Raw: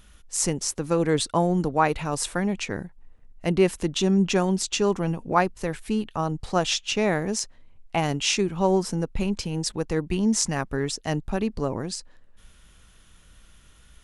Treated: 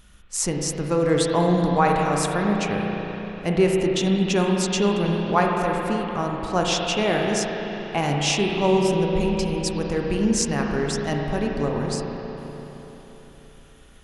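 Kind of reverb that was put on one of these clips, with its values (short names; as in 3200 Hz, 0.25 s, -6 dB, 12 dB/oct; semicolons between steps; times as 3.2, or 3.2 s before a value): spring tank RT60 4 s, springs 34/48 ms, chirp 60 ms, DRR -0.5 dB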